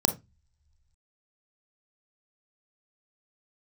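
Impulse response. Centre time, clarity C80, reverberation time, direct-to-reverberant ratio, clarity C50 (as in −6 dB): 10 ms, 21.0 dB, non-exponential decay, 6.5 dB, 12.5 dB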